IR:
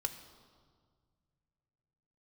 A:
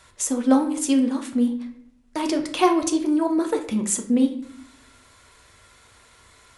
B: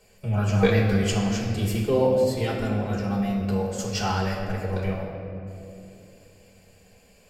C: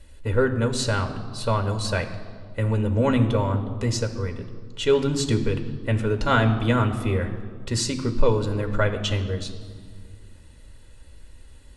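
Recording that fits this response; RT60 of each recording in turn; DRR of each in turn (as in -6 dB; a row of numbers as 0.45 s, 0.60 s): C; 0.65 s, 2.8 s, 1.8 s; 4.0 dB, -4.5 dB, 5.5 dB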